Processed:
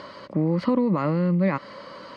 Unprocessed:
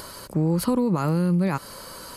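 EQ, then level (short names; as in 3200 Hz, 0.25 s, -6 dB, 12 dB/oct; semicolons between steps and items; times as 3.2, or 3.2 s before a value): dynamic EQ 2000 Hz, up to +4 dB, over -51 dBFS, Q 4.2; speaker cabinet 120–4700 Hz, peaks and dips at 200 Hz +5 dB, 290 Hz +6 dB, 570 Hz +10 dB, 1100 Hz +8 dB, 2000 Hz +10 dB, 3000 Hz +4 dB; low shelf 430 Hz +3 dB; -5.5 dB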